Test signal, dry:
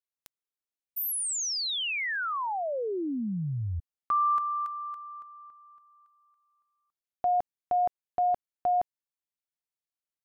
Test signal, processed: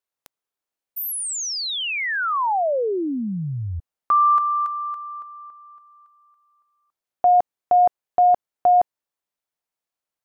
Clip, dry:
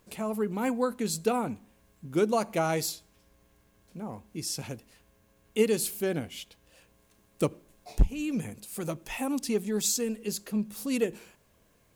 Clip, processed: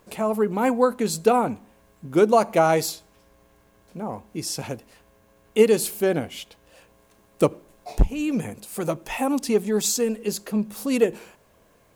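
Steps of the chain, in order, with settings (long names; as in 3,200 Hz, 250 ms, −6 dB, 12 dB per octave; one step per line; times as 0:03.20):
parametric band 740 Hz +7 dB 2.4 octaves
level +3.5 dB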